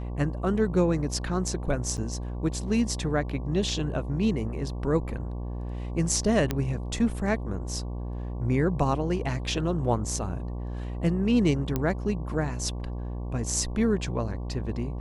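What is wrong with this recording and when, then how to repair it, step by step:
buzz 60 Hz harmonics 19 -33 dBFS
1.97–1.98 gap 7.7 ms
6.51 pop -12 dBFS
11.76 pop -13 dBFS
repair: de-click; de-hum 60 Hz, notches 19; interpolate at 1.97, 7.7 ms

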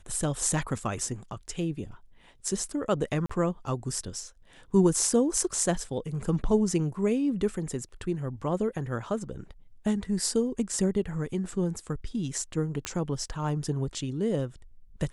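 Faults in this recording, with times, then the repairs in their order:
3.26–3.29 gap 35 ms
12.85 pop -15 dBFS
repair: de-click; interpolate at 3.26, 35 ms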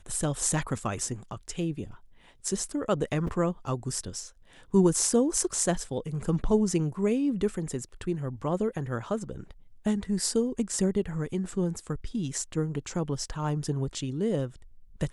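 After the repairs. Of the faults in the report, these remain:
12.85 pop

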